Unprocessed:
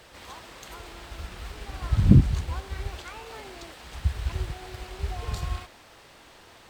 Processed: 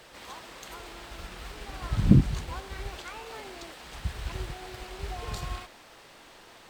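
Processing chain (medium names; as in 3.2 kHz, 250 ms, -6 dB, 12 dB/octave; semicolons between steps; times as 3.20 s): peaking EQ 76 Hz -10 dB 0.97 oct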